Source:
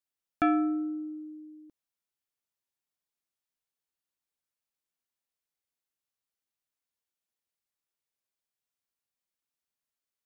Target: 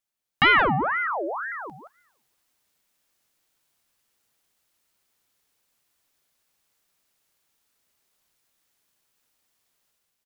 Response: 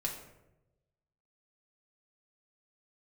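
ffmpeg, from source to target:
-filter_complex "[0:a]asplit=2[link_01][link_02];[link_02]aecho=0:1:174:0.282[link_03];[link_01][link_03]amix=inputs=2:normalize=0,dynaudnorm=framelen=760:gausssize=3:maxgain=13dB,asplit=2[link_04][link_05];[1:a]atrim=start_sample=2205[link_06];[link_05][link_06]afir=irnorm=-1:irlink=0,volume=-13.5dB[link_07];[link_04][link_07]amix=inputs=2:normalize=0,asettb=1/sr,asplit=3[link_08][link_09][link_10];[link_08]atrim=end=1.074[link_11];[link_09]atrim=start=1.07:end=1.52,asetpts=PTS-STARTPTS,afade=type=in:duration=0.004:curve=qsin,afade=type=out:start_time=0.446:duration=0.004:curve=qsin,afreqshift=-190[link_12];[link_10]atrim=start=1.516[link_13];[link_11][link_12]acrossfade=duration=0.004:curve1=hsin:curve2=qsin[link_14];[link_14][link_13]acrossfade=duration=0.004:curve1=qsin:curve2=hsin,aeval=exprs='val(0)*sin(2*PI*1100*n/s+1100*0.6/2*sin(2*PI*2*n/s))':channel_layout=same,volume=6dB"

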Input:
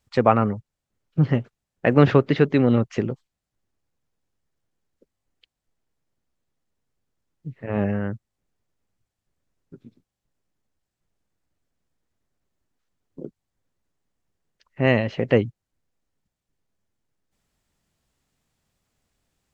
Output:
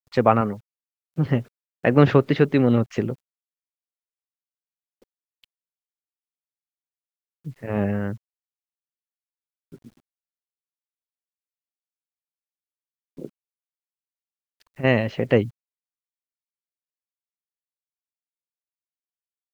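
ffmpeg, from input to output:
ffmpeg -i in.wav -filter_complex "[0:a]asettb=1/sr,asplit=3[link_01][link_02][link_03];[link_01]atrim=end=0.414[link_04];[link_02]atrim=start=0.41:end=1.26,asetpts=PTS-STARTPTS,afade=type=in:duration=0.004:curve=qsin,afade=type=out:start_time=0.846:duration=0.004:curve=qsin,lowshelf=frequency=110:gain=-12[link_05];[link_03]atrim=start=1.256[link_06];[link_04][link_05]acrossfade=duration=0.004:curve1=hsin:curve2=qsin[link_07];[link_07][link_06]acrossfade=duration=0.004:curve1=qsin:curve2=hsin,asplit=3[link_08][link_09][link_10];[link_08]afade=type=out:start_time=13.25:duration=0.02[link_11];[link_09]acompressor=threshold=-34dB:ratio=6,afade=type=in:start_time=13.25:duration=0.02,afade=type=out:start_time=14.83:duration=0.02[link_12];[link_10]afade=type=in:start_time=14.83:duration=0.02[link_13];[link_11][link_12][link_13]amix=inputs=3:normalize=0,acrusher=bits=9:mix=0:aa=0.000001" out.wav

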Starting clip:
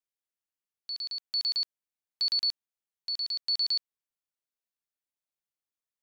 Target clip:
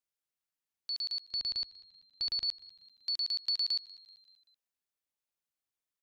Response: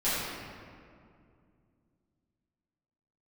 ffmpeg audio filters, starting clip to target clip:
-filter_complex "[0:a]asettb=1/sr,asplit=3[link_01][link_02][link_03];[link_01]atrim=end=1.294[link_04];[link_02]atrim=start=1.29:end=2.49,asetpts=PTS-STARTPTS,afade=type=in:duration=0.004:curve=qsin,afade=type=out:start_time=1.196:duration=0.004:curve=qsin,aemphasis=mode=reproduction:type=bsi[link_05];[link_03]atrim=start=2.486[link_06];[link_04][link_05]acrossfade=duration=0.004:curve1=hsin:curve2=qsin[link_07];[link_07][link_06]acrossfade=duration=0.004:curve1=qsin:curve2=hsin,acompressor=threshold=-29dB:ratio=6,asplit=2[link_08][link_09];[link_09]asplit=4[link_10][link_11][link_12][link_13];[link_10]adelay=192,afreqshift=-93,volume=-21dB[link_14];[link_11]adelay=384,afreqshift=-186,volume=-26.8dB[link_15];[link_12]adelay=576,afreqshift=-279,volume=-32.7dB[link_16];[link_13]adelay=768,afreqshift=-372,volume=-38.5dB[link_17];[link_14][link_15][link_16][link_17]amix=inputs=4:normalize=0[link_18];[link_08][link_18]amix=inputs=2:normalize=0"

